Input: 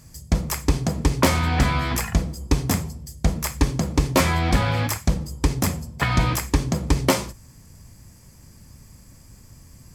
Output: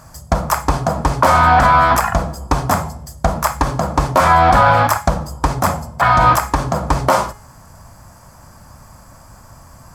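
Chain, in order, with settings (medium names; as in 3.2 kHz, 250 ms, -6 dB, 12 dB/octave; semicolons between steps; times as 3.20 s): high-order bell 950 Hz +15 dB; de-hum 418.4 Hz, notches 26; loudness maximiser +5 dB; trim -1 dB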